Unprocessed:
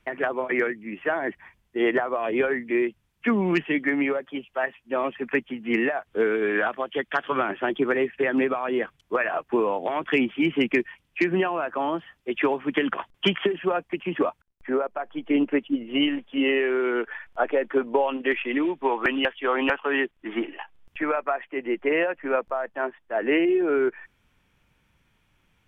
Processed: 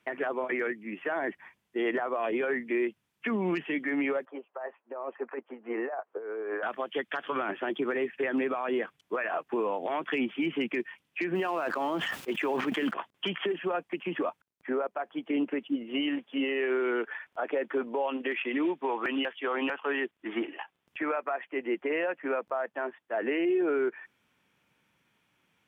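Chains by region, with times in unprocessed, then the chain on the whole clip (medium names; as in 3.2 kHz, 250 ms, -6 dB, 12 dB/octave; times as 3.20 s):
4.25–6.63 s: Butterworth band-pass 730 Hz, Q 0.9 + compressor with a negative ratio -32 dBFS
11.35–12.94 s: companding laws mixed up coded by A + decay stretcher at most 22 dB/s
whole clip: high-pass 180 Hz 12 dB/octave; peak limiter -19 dBFS; trim -2.5 dB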